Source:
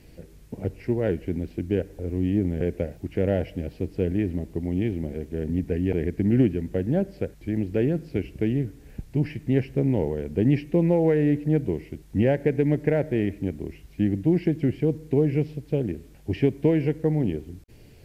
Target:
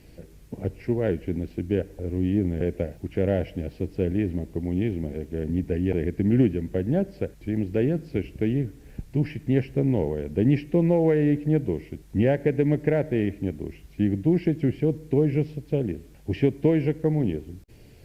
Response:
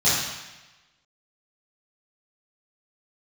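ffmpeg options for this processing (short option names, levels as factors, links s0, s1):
-ar 48000 -c:a libopus -b:a 64k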